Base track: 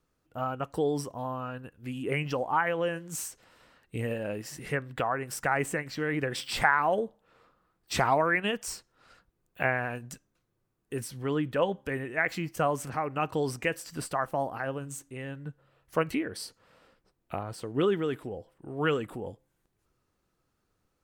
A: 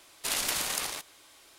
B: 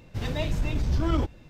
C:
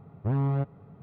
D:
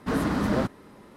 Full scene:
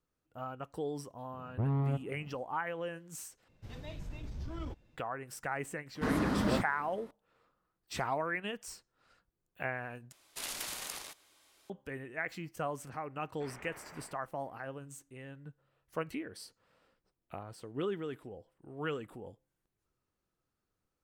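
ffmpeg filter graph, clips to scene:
-filter_complex "[1:a]asplit=2[a][b];[0:a]volume=-9.5dB[c];[b]highpass=f=180:t=q:w=0.5412,highpass=f=180:t=q:w=1.307,lowpass=f=2.3k:t=q:w=0.5176,lowpass=f=2.3k:t=q:w=0.7071,lowpass=f=2.3k:t=q:w=1.932,afreqshift=-170[d];[c]asplit=3[e][f][g];[e]atrim=end=3.484[h];[2:a]atrim=end=1.49,asetpts=PTS-STARTPTS,volume=-16.5dB[i];[f]atrim=start=4.966:end=10.124[j];[a]atrim=end=1.58,asetpts=PTS-STARTPTS,volume=-10dB[k];[g]atrim=start=11.696[l];[3:a]atrim=end=1.02,asetpts=PTS-STARTPTS,volume=-5dB,afade=t=in:d=0.004:c=hsin,afade=t=out:st=1.016:d=0.004:c=hsin,adelay=1330[m];[4:a]atrim=end=1.16,asetpts=PTS-STARTPTS,volume=-5.5dB,afade=t=in:d=0.004:c=hsin,afade=t=out:st=1.156:d=0.004:c=hsin,adelay=5950[n];[d]atrim=end=1.58,asetpts=PTS-STARTPTS,volume=-13.5dB,afade=t=in:d=0.004:c=hsin,afade=t=out:st=1.576:d=0.004:c=hsin,adelay=580356S[o];[h][i]acrossfade=d=0.004:c1=hsin:c2=hsin[p];[p][j]acrossfade=d=0.004:c1=hsin:c2=hsin[q];[q][k]acrossfade=d=0.004:c1=hsin:c2=hsin[r];[r][l]acrossfade=d=0.004:c1=hsin:c2=hsin[s];[s][m][n][o]amix=inputs=4:normalize=0"

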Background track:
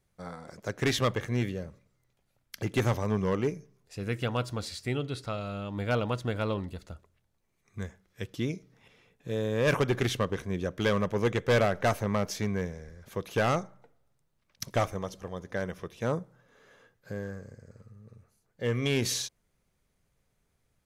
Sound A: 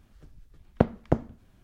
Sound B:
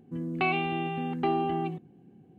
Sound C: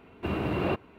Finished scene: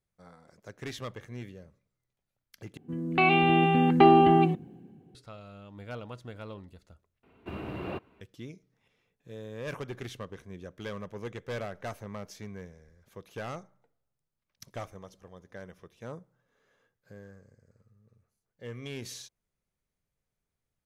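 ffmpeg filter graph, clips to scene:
-filter_complex "[0:a]volume=-12dB[a];[2:a]dynaudnorm=f=120:g=9:m=11dB[b];[a]asplit=3[c][d][e];[c]atrim=end=2.774[f];[b]atrim=end=2.38,asetpts=PTS-STARTPTS,volume=-1dB[g];[d]atrim=start=5.146:end=7.234[h];[3:a]atrim=end=0.98,asetpts=PTS-STARTPTS,volume=-8.5dB[i];[e]atrim=start=8.206[j];[f][g]acrossfade=d=0.004:c1=hsin:c2=hsin[k];[k][h]acrossfade=d=0.004:c1=hsin:c2=hsin[l];[l][i]acrossfade=d=0.004:c1=hsin:c2=hsin[m];[m][j]acrossfade=d=0.004:c1=hsin:c2=hsin"

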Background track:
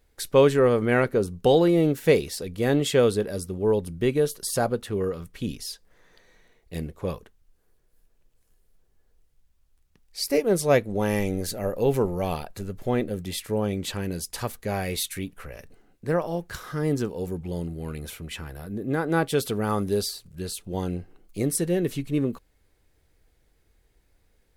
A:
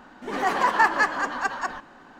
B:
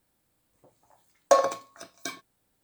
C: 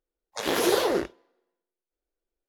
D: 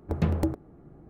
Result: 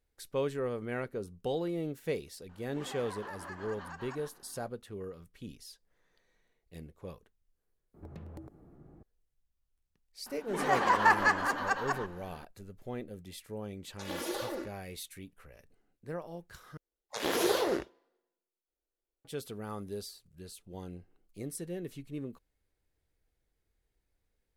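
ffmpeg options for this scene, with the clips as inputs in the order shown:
-filter_complex "[1:a]asplit=2[a][b];[3:a]asplit=2[c][d];[0:a]volume=-15dB[e];[a]acompressor=threshold=-27dB:ratio=6:attack=3.2:release=140:knee=1:detection=peak[f];[4:a]acompressor=threshold=-39dB:ratio=6:attack=3.2:release=140:knee=1:detection=peak[g];[c]aecho=1:1:3.5:0.89[h];[e]asplit=2[i][j];[i]atrim=end=16.774[k];[d]atrim=end=2.48,asetpts=PTS-STARTPTS,volume=-5.5dB[l];[j]atrim=start=19.246[m];[f]atrim=end=2.19,asetpts=PTS-STARTPTS,volume=-14.5dB,afade=t=in:d=0.004:c=hsin,afade=t=out:st=2.186:d=0.004:c=hsin,adelay=2490[n];[g]atrim=end=1.09,asetpts=PTS-STARTPTS,volume=-5dB,afade=t=in:d=0.004:c=hsin,afade=t=out:st=1.086:d=0.004:c=hsin,adelay=350154S[o];[b]atrim=end=2.19,asetpts=PTS-STARTPTS,volume=-4.5dB,afade=t=in:d=0.004:c=hsin,afade=t=out:st=2.186:d=0.004:c=hsin,adelay=452466S[p];[h]atrim=end=2.48,asetpts=PTS-STARTPTS,volume=-15.5dB,afade=t=in:d=0.004:c=hsin,afade=t=out:st=2.476:d=0.004:c=hsin,adelay=13620[q];[k][l]acrossfade=d=0.004:c1=hsin:c2=hsin[r];[r][m]acrossfade=d=0.004:c1=hsin:c2=hsin[s];[s][n][o][p][q]amix=inputs=5:normalize=0"

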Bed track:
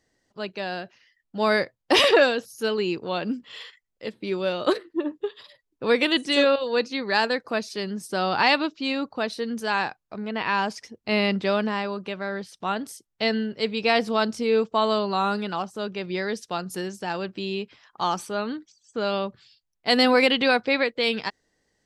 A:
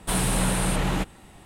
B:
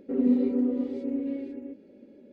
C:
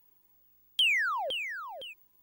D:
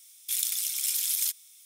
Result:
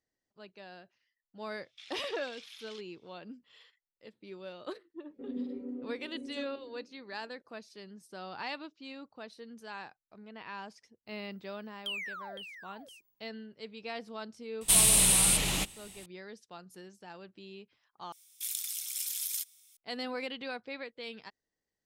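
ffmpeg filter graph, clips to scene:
-filter_complex "[4:a]asplit=2[a][b];[0:a]volume=-19dB[c];[a]lowpass=f=3.8k:w=0.5412,lowpass=f=3.8k:w=1.3066[d];[1:a]aexciter=amount=7:drive=1.5:freq=2.2k[e];[c]asplit=2[f][g];[f]atrim=end=18.124[h];[b]atrim=end=1.65,asetpts=PTS-STARTPTS,volume=-7.5dB[i];[g]atrim=start=19.766[j];[d]atrim=end=1.65,asetpts=PTS-STARTPTS,volume=-9dB,afade=t=in:d=0.004:c=hsin,afade=t=out:st=1.646:d=0.004:c=hsin,adelay=1490[k];[2:a]atrim=end=2.32,asetpts=PTS-STARTPTS,volume=-15dB,afade=t=in:d=0.004:c=hsin,afade=t=out:st=2.316:d=0.004:c=hsin,adelay=5100[l];[3:a]atrim=end=2.22,asetpts=PTS-STARTPTS,volume=-12dB,afade=t=in:d=0.004:c=hsin,afade=t=out:st=2.216:d=0.004:c=hsin,adelay=11070[m];[e]atrim=end=1.45,asetpts=PTS-STARTPTS,volume=-10dB,afade=t=in:d=0.004:c=hsin,afade=t=out:st=1.446:d=0.004:c=hsin,adelay=14610[n];[h][i]acrossfade=d=0.004:c1=hsin:c2=hsin[o];[o][j]acrossfade=d=0.004:c1=hsin:c2=hsin[p];[p][k][l][m][n]amix=inputs=5:normalize=0"

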